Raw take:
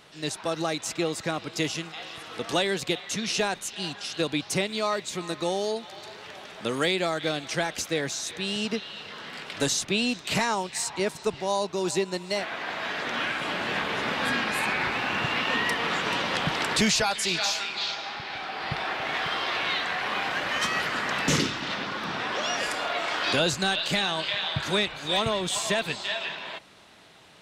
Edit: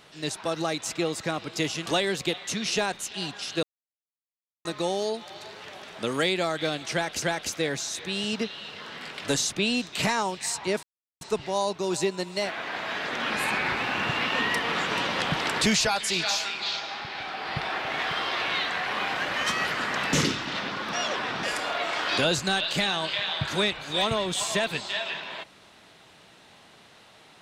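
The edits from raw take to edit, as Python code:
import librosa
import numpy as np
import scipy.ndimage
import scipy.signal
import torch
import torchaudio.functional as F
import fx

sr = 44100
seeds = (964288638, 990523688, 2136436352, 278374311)

y = fx.edit(x, sr, fx.cut(start_s=1.86, length_s=0.62),
    fx.silence(start_s=4.25, length_s=1.02),
    fx.repeat(start_s=7.54, length_s=0.3, count=2),
    fx.insert_silence(at_s=11.15, length_s=0.38),
    fx.cut(start_s=13.24, length_s=1.21),
    fx.reverse_span(start_s=22.08, length_s=0.5), tone=tone)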